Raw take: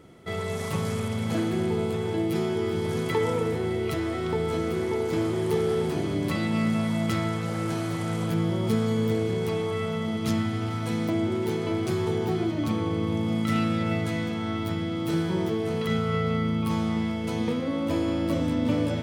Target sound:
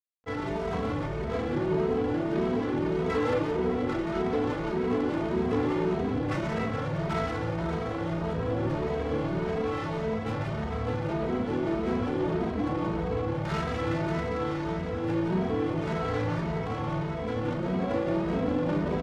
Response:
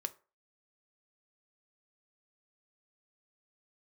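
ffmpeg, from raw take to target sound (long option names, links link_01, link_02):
-filter_complex "[0:a]asplit=3[link_01][link_02][link_03];[link_02]asetrate=22050,aresample=44100,atempo=2,volume=-8dB[link_04];[link_03]asetrate=29433,aresample=44100,atempo=1.49831,volume=-2dB[link_05];[link_01][link_04][link_05]amix=inputs=3:normalize=0,asoftclip=type=tanh:threshold=-24.5dB,lowshelf=frequency=180:gain=-10,acrusher=bits=6:mix=0:aa=0.000001,adynamicsmooth=sensitivity=3:basefreq=690,aecho=1:1:37.9|174.9:0.355|0.562,asplit=2[link_06][link_07];[1:a]atrim=start_sample=2205,asetrate=57330,aresample=44100[link_08];[link_07][link_08]afir=irnorm=-1:irlink=0,volume=3dB[link_09];[link_06][link_09]amix=inputs=2:normalize=0,asplit=2[link_10][link_11];[link_11]adelay=2.8,afreqshift=1.7[link_12];[link_10][link_12]amix=inputs=2:normalize=1"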